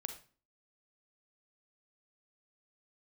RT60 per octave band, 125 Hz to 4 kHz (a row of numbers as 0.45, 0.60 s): 0.45, 0.55, 0.40, 0.40, 0.35, 0.35 s